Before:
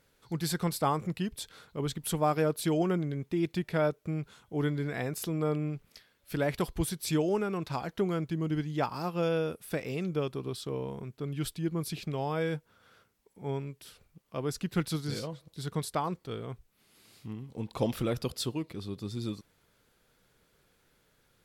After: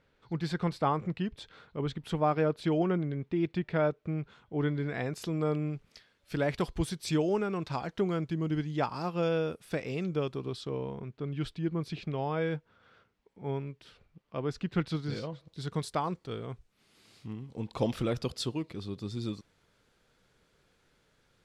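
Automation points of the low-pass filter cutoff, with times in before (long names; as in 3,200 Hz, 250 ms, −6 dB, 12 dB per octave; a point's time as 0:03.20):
0:04.58 3,200 Hz
0:05.35 6,800 Hz
0:10.41 6,800 Hz
0:11.00 3,600 Hz
0:15.15 3,600 Hz
0:15.80 7,500 Hz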